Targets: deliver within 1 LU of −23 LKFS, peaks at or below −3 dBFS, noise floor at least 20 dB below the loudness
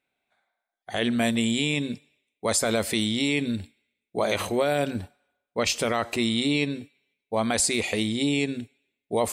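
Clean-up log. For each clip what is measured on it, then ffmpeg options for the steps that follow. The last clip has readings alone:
integrated loudness −25.5 LKFS; sample peak −12.5 dBFS; target loudness −23.0 LKFS
→ -af "volume=2.5dB"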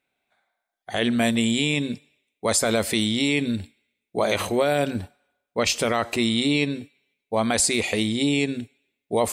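integrated loudness −23.5 LKFS; sample peak −10.0 dBFS; background noise floor −83 dBFS

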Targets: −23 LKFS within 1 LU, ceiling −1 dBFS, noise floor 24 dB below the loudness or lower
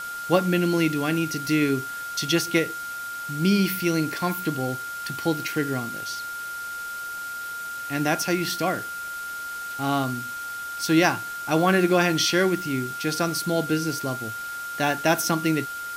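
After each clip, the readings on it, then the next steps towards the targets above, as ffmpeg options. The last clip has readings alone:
interfering tone 1,400 Hz; level of the tone −31 dBFS; background noise floor −34 dBFS; target noise floor −49 dBFS; integrated loudness −25.0 LKFS; sample peak −4.5 dBFS; target loudness −23.0 LKFS
→ -af "bandreject=frequency=1400:width=30"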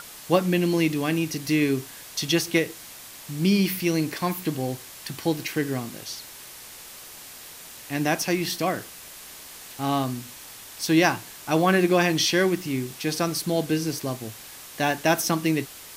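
interfering tone none found; background noise floor −43 dBFS; target noise floor −49 dBFS
→ -af "afftdn=noise_reduction=6:noise_floor=-43"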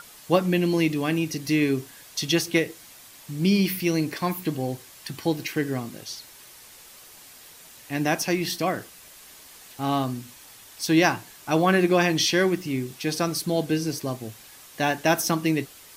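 background noise floor −48 dBFS; target noise floor −49 dBFS
→ -af "afftdn=noise_reduction=6:noise_floor=-48"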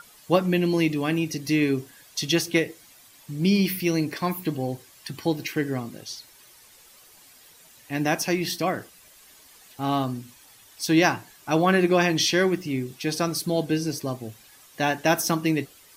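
background noise floor −53 dBFS; integrated loudness −24.5 LKFS; sample peak −4.5 dBFS; target loudness −23.0 LKFS
→ -af "volume=1.5dB"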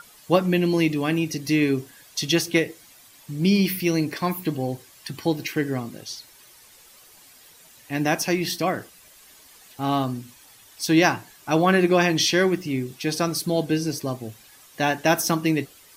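integrated loudness −23.0 LKFS; sample peak −3.0 dBFS; background noise floor −51 dBFS

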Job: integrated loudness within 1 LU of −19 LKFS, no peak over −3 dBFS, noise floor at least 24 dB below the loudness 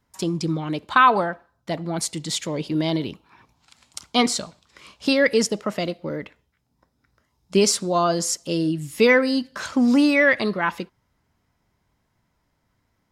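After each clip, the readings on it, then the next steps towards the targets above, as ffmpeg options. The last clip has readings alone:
integrated loudness −21.5 LKFS; sample peak −4.5 dBFS; target loudness −19.0 LKFS
→ -af "volume=2.5dB,alimiter=limit=-3dB:level=0:latency=1"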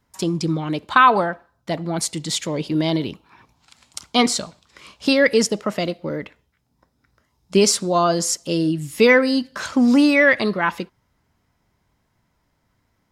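integrated loudness −19.0 LKFS; sample peak −3.0 dBFS; background noise floor −69 dBFS

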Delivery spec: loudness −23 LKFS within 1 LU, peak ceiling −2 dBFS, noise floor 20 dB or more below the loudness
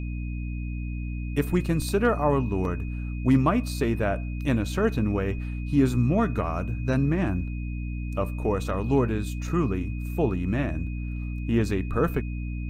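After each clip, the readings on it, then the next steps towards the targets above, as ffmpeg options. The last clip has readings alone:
mains hum 60 Hz; hum harmonics up to 300 Hz; level of the hum −29 dBFS; interfering tone 2,500 Hz; level of the tone −46 dBFS; integrated loudness −26.5 LKFS; sample peak −10.0 dBFS; target loudness −23.0 LKFS
→ -af "bandreject=frequency=60:width_type=h:width=4,bandreject=frequency=120:width_type=h:width=4,bandreject=frequency=180:width_type=h:width=4,bandreject=frequency=240:width_type=h:width=4,bandreject=frequency=300:width_type=h:width=4"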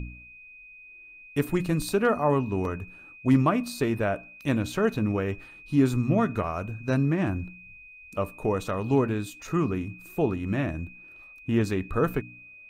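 mains hum none found; interfering tone 2,500 Hz; level of the tone −46 dBFS
→ -af "bandreject=frequency=2500:width=30"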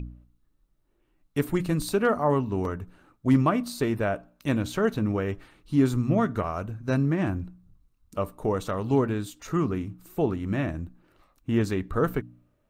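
interfering tone none found; integrated loudness −27.0 LKFS; sample peak −10.5 dBFS; target loudness −23.0 LKFS
→ -af "volume=4dB"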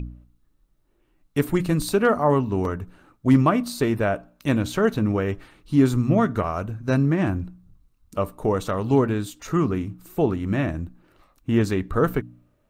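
integrated loudness −23.0 LKFS; sample peak −6.5 dBFS; background noise floor −66 dBFS

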